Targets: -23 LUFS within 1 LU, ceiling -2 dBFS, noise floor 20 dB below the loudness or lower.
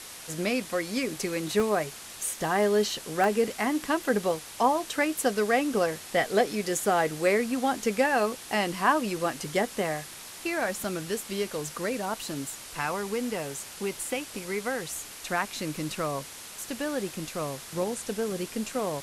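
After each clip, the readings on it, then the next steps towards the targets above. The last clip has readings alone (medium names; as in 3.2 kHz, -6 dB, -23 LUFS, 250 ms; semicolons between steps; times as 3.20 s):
dropouts 4; longest dropout 1.1 ms; noise floor -44 dBFS; noise floor target -49 dBFS; loudness -29.0 LUFS; peak level -9.5 dBFS; loudness target -23.0 LUFS
-> interpolate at 1.60/3.24/6.78/10.84 s, 1.1 ms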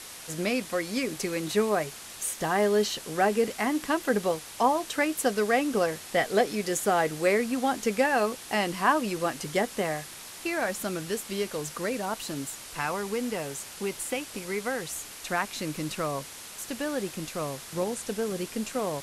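dropouts 0; noise floor -44 dBFS; noise floor target -49 dBFS
-> noise reduction 6 dB, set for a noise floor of -44 dBFS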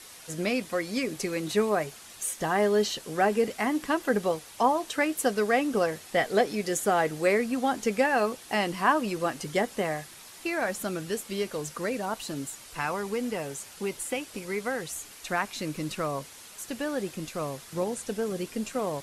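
noise floor -48 dBFS; noise floor target -49 dBFS
-> noise reduction 6 dB, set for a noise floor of -48 dBFS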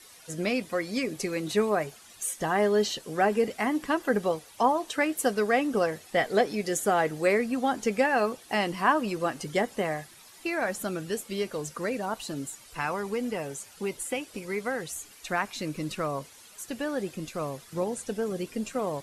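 noise floor -52 dBFS; loudness -29.0 LUFS; peak level -9.5 dBFS; loudness target -23.0 LUFS
-> trim +6 dB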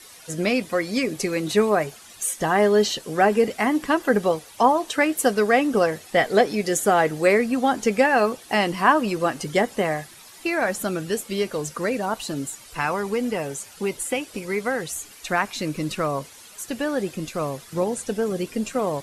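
loudness -23.0 LUFS; peak level -3.5 dBFS; noise floor -46 dBFS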